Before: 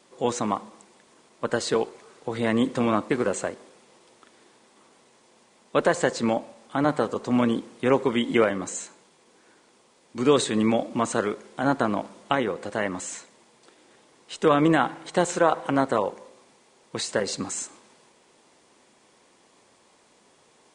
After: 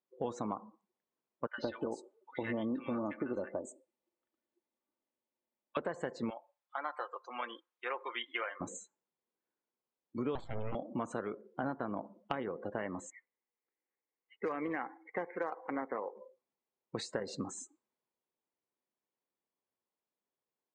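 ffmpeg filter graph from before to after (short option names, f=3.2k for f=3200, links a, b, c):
-filter_complex "[0:a]asettb=1/sr,asplit=3[a][b][c];[a]atrim=end=1.474[d];[b]atrim=start=1.47:end=5.77,asetpts=PTS-STARTPTS,afade=t=in:d=0.004:c=qsin,afade=t=out:st=4.296:d=0.004:c=qsin,aecho=1:1:3.4:0.44,atrim=end_sample=189630,acrossover=split=1200|5400[e][f][g];[e]adelay=110[h];[g]adelay=310[i];[h][f][i]amix=inputs=3:normalize=0,atrim=end_sample=189630[j];[c]atrim=start=5.766[k];[d][j]acrossfade=d=0.004:c1=hsin:c2=qsin[l];[l][k]acrossfade=d=0.004:c1=qsin:c2=hsin,asettb=1/sr,asplit=3[m][n][o];[m]atrim=end=6.304[p];[n]atrim=start=6.3:end=8.61,asetpts=PTS-STARTPTS,afade=t=in:d=0.004:c=qsin,afade=t=out:st=2.306:d=0.004:c=qsin,highpass=1.1k,aecho=1:1:5.7:0.38,atrim=end_sample=101871[q];[o]atrim=start=8.606[r];[p][q]acrossfade=d=0.004:c1=hsin:c2=qsin[s];[s][r]acrossfade=d=0.004:c1=qsin:c2=hsin,asettb=1/sr,asplit=3[t][u][v];[t]atrim=end=10.354[w];[u]atrim=start=10.35:end=10.75,asetpts=PTS-STARTPTS,afade=t=in:d=0.004:c=qsin,afade=t=out:st=0.396:d=0.004:c=qsin,lowpass=7.1k,highshelf=f=4.1k:g=-7.5,aeval=exprs='abs(val(0))':c=same[x];[v]atrim=start=10.746[y];[w][x]acrossfade=d=0.004:c1=hsin:c2=qsin[z];[z][y]acrossfade=d=0.004:c1=qsin:c2=hsin,asettb=1/sr,asplit=3[aa][ab][ac];[aa]atrim=end=13.104[ad];[ab]atrim=start=13.1:end=16.15,asetpts=PTS-STARTPTS,afade=t=in:d=0.004:c=qsin,afade=t=out:st=3.046:d=0.004:c=qsin,highpass=360,equalizer=f=360:t=q:w=4:g=-4,equalizer=f=630:t=q:w=4:g=-9,equalizer=f=970:t=q:w=4:g=-4,equalizer=f=1.4k:t=q:w=4:g=-6,equalizer=f=2.1k:t=q:w=4:g=8,lowpass=f=2.2k:w=0.5412,lowpass=f=2.2k:w=1.3066,acrusher=bits=3:mode=log:mix=0:aa=0.000001[ae];[ac]atrim=start=16.146[af];[ad][ae]acrossfade=d=0.004:c1=hsin:c2=qsin[ag];[ag][af]acrossfade=d=0.004:c1=qsin:c2=hsin,afftdn=nr=32:nf=-37,lowpass=f=2.4k:p=1,acompressor=threshold=-30dB:ratio=6,volume=-3.5dB"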